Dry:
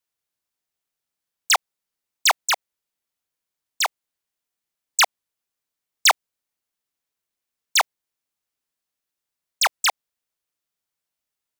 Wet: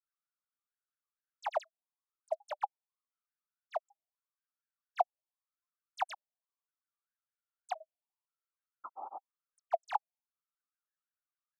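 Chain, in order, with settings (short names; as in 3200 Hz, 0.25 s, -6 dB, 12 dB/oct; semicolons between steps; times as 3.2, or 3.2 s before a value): painted sound noise, 8.92–9.14, 230–1400 Hz -34 dBFS; auto-wah 700–1400 Hz, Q 12, down, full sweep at -28 dBFS; grains 0.1 s, grains 20/s, spray 0.1 s, pitch spread up and down by 3 st; gain +3 dB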